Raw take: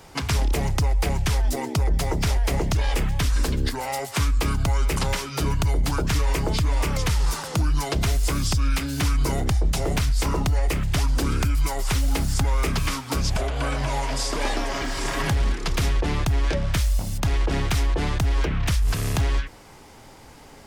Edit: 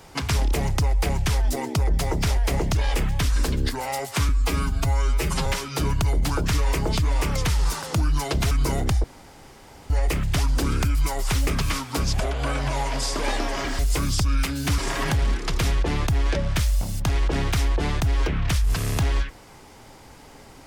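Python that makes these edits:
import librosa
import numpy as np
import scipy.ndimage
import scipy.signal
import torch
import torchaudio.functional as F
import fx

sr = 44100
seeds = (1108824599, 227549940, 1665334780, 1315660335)

y = fx.edit(x, sr, fx.stretch_span(start_s=4.29, length_s=0.78, factor=1.5),
    fx.move(start_s=8.12, length_s=0.99, to_s=14.96),
    fx.room_tone_fill(start_s=9.64, length_s=0.86),
    fx.cut(start_s=12.07, length_s=0.57), tone=tone)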